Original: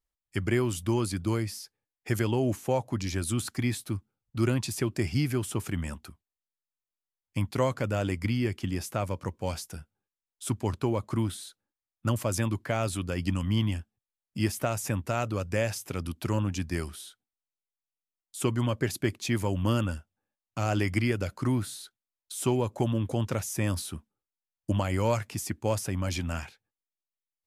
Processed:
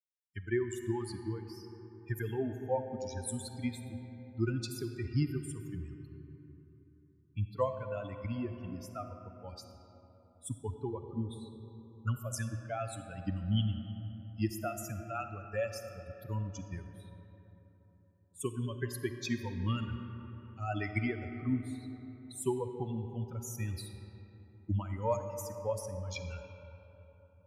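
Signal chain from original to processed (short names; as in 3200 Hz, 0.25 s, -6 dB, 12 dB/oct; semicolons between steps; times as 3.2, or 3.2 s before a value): per-bin expansion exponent 3; digital reverb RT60 3.8 s, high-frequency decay 0.45×, pre-delay 10 ms, DRR 7 dB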